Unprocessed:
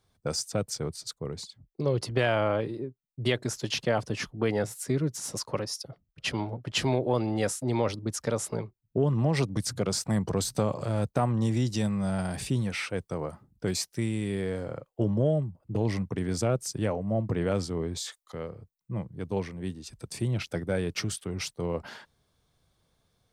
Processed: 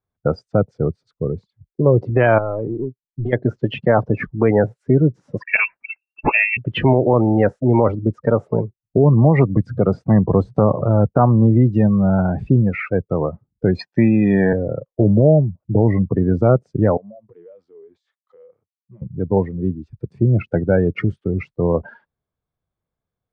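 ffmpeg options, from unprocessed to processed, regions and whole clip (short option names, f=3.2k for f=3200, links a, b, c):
-filter_complex "[0:a]asettb=1/sr,asplit=3[a][b][c];[a]atrim=end=2.384[d];[b]atrim=start=2.38:end=3.33,asetpts=PTS-STARTPTS,afade=t=in:d=0.004:c=qsin,afade=t=out:st=0.946:d=0.004:c=qsin,acompressor=threshold=-27dB:ratio=10:attack=3.2:release=140:knee=1:detection=peak,aeval=exprs='(tanh(31.6*val(0)+0.35)-tanh(0.35))/31.6':c=same[e];[c]atrim=start=3.326[f];[d][e]acrossfade=d=0.004:c1=hsin:c2=qsin[g];[g][f]acrossfade=d=0.004:c1=qsin:c2=hsin,asettb=1/sr,asplit=3[h][i][j];[h]atrim=end=5.424[k];[i]atrim=start=5.42:end=6.57,asetpts=PTS-STARTPTS,afade=t=in:d=0.004:c=qsin,afade=t=out:st=1.146:d=0.004:c=qsin,lowpass=f=2.4k:t=q:w=0.5098,lowpass=f=2.4k:t=q:w=0.6013,lowpass=f=2.4k:t=q:w=0.9,lowpass=f=2.4k:t=q:w=2.563,afreqshift=-2800,acontrast=79[l];[j]atrim=start=6.566[m];[k][l]acrossfade=d=0.004:c1=hsin:c2=qsin[n];[n][m]acrossfade=d=0.004:c1=qsin:c2=hsin,asettb=1/sr,asplit=3[o][p][q];[o]atrim=end=13.794[r];[p]atrim=start=13.79:end=14.53,asetpts=PTS-STARTPTS,afade=t=in:d=0.004:c=qsin,afade=t=out:st=0.736:d=0.004:c=qsin,aecho=1:1:1.2:0.56,atrim=end_sample=32634,acontrast=65,highpass=210,lowpass=6.3k[s];[q]atrim=start=14.526[t];[r][s]acrossfade=d=0.004:c1=hsin:c2=qsin[u];[u][t]acrossfade=d=0.004:c1=qsin:c2=hsin,asettb=1/sr,asplit=3[v][w][x];[v]atrim=end=16.974[y];[w]atrim=start=16.97:end=19.02,asetpts=PTS-STARTPTS,afade=t=in:d=0.004:c=qsin,afade=t=out:st=2.046:d=0.004:c=qsin,highpass=f=790:p=1,acompressor=threshold=-46dB:ratio=8:attack=3.2:release=140:knee=1:detection=peak[z];[x]atrim=start=19.016[aa];[y][z]acrossfade=d=0.004:c1=hsin:c2=qsin[ab];[ab][aa]acrossfade=d=0.004:c1=qsin:c2=hsin,lowpass=1.9k,afftdn=nr=26:nf=-36,alimiter=level_in=16dB:limit=-1dB:release=50:level=0:latency=1,volume=-2.5dB"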